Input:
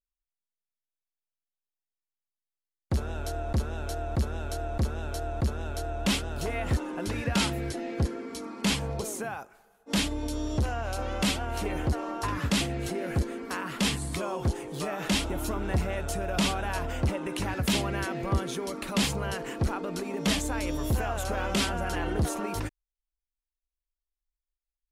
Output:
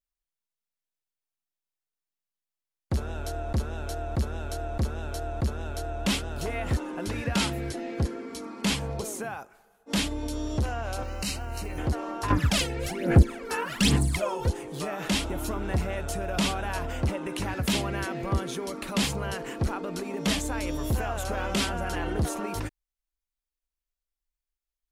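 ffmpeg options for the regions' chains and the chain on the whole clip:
ffmpeg -i in.wav -filter_complex "[0:a]asettb=1/sr,asplit=3[link_01][link_02][link_03];[link_01]atrim=end=11.034[link_04];[link_02]atrim=start=11.03:end=11.78,asetpts=PTS-STARTPTS,afade=type=in:duration=0.004:curve=qsin,afade=type=out:start_time=0.746:duration=0.004:curve=qsin,acrusher=bits=9:mode=log:mix=0:aa=0.000001,acrossover=split=130|3000[link_05][link_06][link_07];[link_06]acompressor=threshold=-39dB:ratio=2.5:attack=3.2:release=140:knee=2.83:detection=peak[link_08];[link_05][link_08][link_07]amix=inputs=3:normalize=0,asuperstop=centerf=3400:order=8:qfactor=5.3[link_09];[link_03]atrim=start=11.776[link_10];[link_04][link_09]acrossfade=duration=0.004:curve1=hsin:curve2=qsin[link_11];[link_11][link_10]acrossfade=duration=0.004:curve1=qsin:curve2=hsin,asettb=1/sr,asplit=3[link_12][link_13][link_14];[link_12]atrim=end=12.304[link_15];[link_13]atrim=start=12.3:end=14.5,asetpts=PTS-STARTPTS,afade=type=in:duration=0.004:curve=qsin,afade=type=out:start_time=2.196:duration=0.004:curve=qsin,bandreject=frequency=1100:width=18,aphaser=in_gain=1:out_gain=1:delay=2.3:decay=0.73:speed=1.2:type=sinusoidal[link_16];[link_14]atrim=start=14.496[link_17];[link_15][link_16]acrossfade=duration=0.004:curve1=hsin:curve2=qsin[link_18];[link_18][link_17]acrossfade=duration=0.004:curve1=qsin:curve2=hsin" out.wav

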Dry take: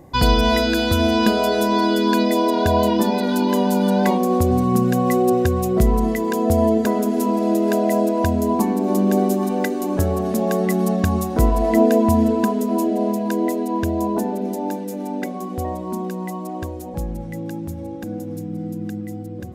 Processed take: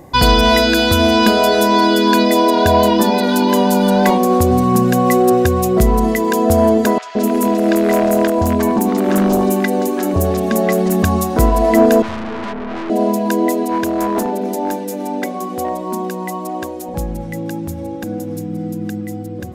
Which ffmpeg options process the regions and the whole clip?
ffmpeg -i in.wav -filter_complex "[0:a]asettb=1/sr,asplit=3[link_01][link_02][link_03];[link_01]atrim=end=6.984[link_04];[link_02]atrim=start=6.98:end=11.03,asetpts=PTS-STARTPTS,afade=type=in:duration=0.004:curve=qsin,afade=type=out:start_time=4.046:duration=0.004:curve=qsin,aeval=exprs='0.266*(abs(mod(val(0)/0.266+3,4)-2)-1)':channel_layout=same,acrossover=split=1000|5600[link_05][link_06][link_07];[link_05]adelay=170[link_08];[link_07]adelay=210[link_09];[link_08][link_06][link_09]amix=inputs=3:normalize=0,atrim=end_sample=178605[link_10];[link_03]atrim=start=11.026[link_11];[link_04][link_10]acrossfade=duration=0.004:curve1=hsin:curve2=qsin[link_12];[link_12][link_11]acrossfade=duration=0.004:curve1=qsin:curve2=hsin,asettb=1/sr,asplit=3[link_13][link_14][link_15];[link_13]atrim=end=12.024[link_16];[link_14]atrim=start=12.02:end=12.9,asetpts=PTS-STARTPTS,afade=type=in:duration=0.004:curve=qsin,afade=type=out:start_time=0.876:duration=0.004:curve=qsin,lowpass=frequency=2000:width=0.5412,lowpass=frequency=2000:width=1.3066,aeval=exprs='(tanh(28.2*val(0)+0.65)-tanh(0.65))/28.2':channel_layout=same[link_17];[link_15]atrim=start=12.896[link_18];[link_16][link_17]acrossfade=duration=0.004:curve1=hsin:curve2=qsin[link_19];[link_19][link_18]acrossfade=duration=0.004:curve1=qsin:curve2=hsin,asettb=1/sr,asplit=3[link_20][link_21][link_22];[link_20]atrim=end=13.634[link_23];[link_21]atrim=start=13.63:end=16.89,asetpts=PTS-STARTPTS,afade=type=in:duration=0.004:curve=qsin,afade=type=out:start_time=3.256:duration=0.004:curve=qsin,highpass=200,volume=18dB,asoftclip=hard,volume=-18dB[link_24];[link_22]atrim=start=16.886[link_25];[link_23][link_24]acrossfade=duration=0.004:curve1=hsin:curve2=qsin[link_26];[link_26][link_25]acrossfade=duration=0.004:curve1=qsin:curve2=hsin,lowshelf=frequency=460:gain=-5,acontrast=76,volume=1.5dB" out.wav

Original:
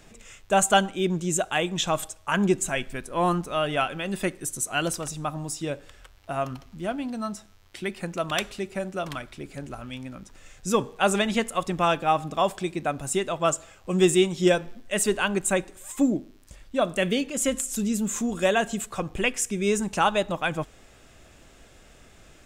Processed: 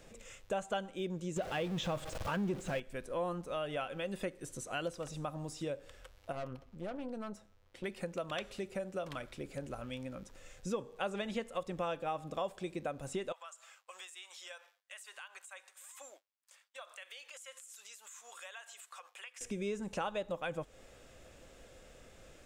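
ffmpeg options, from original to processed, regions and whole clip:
ffmpeg -i in.wav -filter_complex "[0:a]asettb=1/sr,asplit=3[link_01][link_02][link_03];[link_01]atrim=end=1.364[link_04];[link_02]atrim=start=1.36:end=2.8,asetpts=PTS-STARTPTS,afade=type=in:duration=0.004:curve=qsin,afade=type=out:start_time=1.436:duration=0.004:curve=qsin,aeval=exprs='val(0)+0.5*0.0531*sgn(val(0))':channel_layout=same,equalizer=frequency=130:width_type=o:width=2.2:gain=6.5[link_05];[link_03]atrim=start=2.796[link_06];[link_04][link_05]acrossfade=duration=0.004:curve1=hsin:curve2=qsin[link_07];[link_07][link_06]acrossfade=duration=0.004:curve1=qsin:curve2=hsin,asettb=1/sr,asplit=3[link_08][link_09][link_10];[link_08]atrim=end=6.324[link_11];[link_09]atrim=start=6.32:end=7.84,asetpts=PTS-STARTPTS,afade=type=in:duration=0.004:curve=qsin,afade=type=out:start_time=1.516:duration=0.004:curve=qsin,highshelf=frequency=3100:gain=-9,aeval=exprs='(tanh(31.6*val(0)+0.7)-tanh(0.7))/31.6':channel_layout=same[link_12];[link_10]atrim=start=7.836[link_13];[link_11][link_12]acrossfade=duration=0.004:curve1=hsin:curve2=qsin[link_14];[link_14][link_13]acrossfade=duration=0.004:curve1=qsin:curve2=hsin,asettb=1/sr,asplit=3[link_15][link_16][link_17];[link_15]atrim=end=13.324[link_18];[link_16]atrim=start=13.32:end=19.41,asetpts=PTS-STARTPTS,afade=type=in:duration=0.004:curve=qsin,afade=type=out:start_time=6.086:duration=0.004:curve=qsin,highpass=frequency=960:width=0.5412,highpass=frequency=960:width=1.3066,acompressor=threshold=-41dB:ratio=5:attack=3.2:release=140:knee=1:detection=peak,agate=range=-33dB:threshold=-54dB:ratio=3:release=100:detection=peak[link_19];[link_17]atrim=start=19.406[link_20];[link_18][link_19]acrossfade=duration=0.004:curve1=hsin:curve2=qsin[link_21];[link_21][link_20]acrossfade=duration=0.004:curve1=qsin:curve2=hsin,acrossover=split=5100[link_22][link_23];[link_23]acompressor=threshold=-44dB:ratio=4:attack=1:release=60[link_24];[link_22][link_24]amix=inputs=2:normalize=0,equalizer=frequency=520:width_type=o:width=0.29:gain=11,acompressor=threshold=-31dB:ratio=3,volume=-6dB" out.wav

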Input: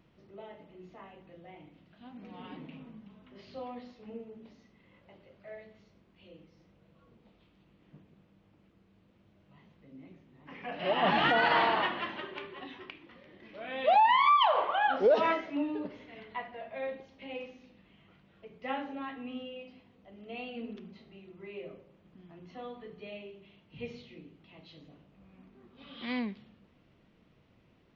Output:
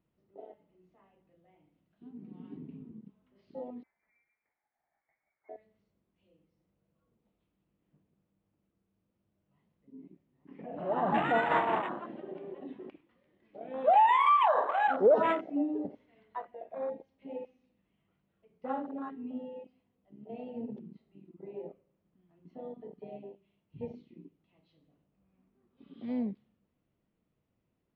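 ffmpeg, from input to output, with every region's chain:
ffmpeg -i in.wav -filter_complex "[0:a]asettb=1/sr,asplit=3[link_01][link_02][link_03];[link_01]atrim=end=3.834[link_04];[link_02]atrim=start=3.83:end=5.49,asetpts=PTS-STARTPTS,afade=type=in:duration=0.004:curve=qsin,afade=type=out:start_time=1.656:duration=0.004:curve=qsin,highpass=frequency=660:width=0.5412,highpass=frequency=660:width=1.3066,lowpass=frequency=2400:width_type=q:width=0.5098,lowpass=frequency=2400:width_type=q:width=0.6013,lowpass=frequency=2400:width_type=q:width=0.9,lowpass=frequency=2400:width_type=q:width=2.563,afreqshift=-2800[link_05];[link_03]atrim=start=5.486[link_06];[link_04][link_05]acrossfade=duration=0.004:curve1=hsin:curve2=qsin[link_07];[link_07][link_06]acrossfade=duration=0.004:curve1=qsin:curve2=hsin,asettb=1/sr,asplit=3[link_08][link_09][link_10];[link_08]atrim=end=10.594[link_11];[link_09]atrim=start=10.59:end=13.01,asetpts=PTS-STARTPTS,afade=type=in:duration=0.004:curve=qsin,afade=type=out:start_time=2.416:duration=0.004:curve=qsin,tremolo=f=5.2:d=0.45,aemphasis=mode=reproduction:type=50fm,acompressor=mode=upward:threshold=-34dB:ratio=2.5:attack=3.2:release=140:knee=2.83:detection=peak[link_12];[link_10]atrim=start=13.006[link_13];[link_11][link_12]acrossfade=duration=0.004:curve1=hsin:curve2=qsin[link_14];[link_14][link_13]acrossfade=duration=0.004:curve1=qsin:curve2=hsin,highshelf=frequency=2100:gain=-12,afwtdn=0.0141,highshelf=frequency=4300:gain=7.5,volume=2dB" out.wav

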